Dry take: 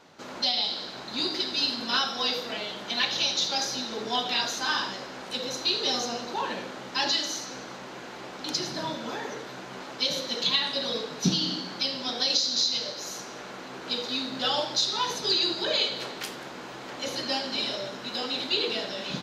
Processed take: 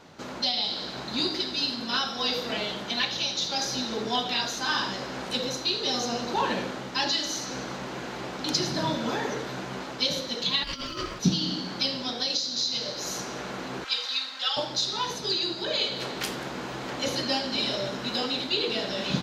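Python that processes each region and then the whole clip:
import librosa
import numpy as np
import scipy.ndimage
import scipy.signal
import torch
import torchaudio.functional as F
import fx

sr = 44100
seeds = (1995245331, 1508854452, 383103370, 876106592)

y = fx.over_compress(x, sr, threshold_db=-33.0, ratio=-0.5, at=(10.63, 11.18), fade=0.02)
y = fx.dmg_crackle(y, sr, seeds[0], per_s=490.0, level_db=-46.0, at=(10.63, 11.18), fade=0.02)
y = fx.ring_mod(y, sr, carrier_hz=810.0, at=(10.63, 11.18), fade=0.02)
y = fx.chain(y, sr, fx.highpass(hz=1400.0, slope=12),
    fx.high_shelf(hz=9800.0, db=-9.5),
    fx.comb(ms=3.8, depth=0.67), at=(13.84, 14.57))
y = fx.low_shelf(y, sr, hz=170.0, db=10.0)
y = fx.rider(y, sr, range_db=4, speed_s=0.5)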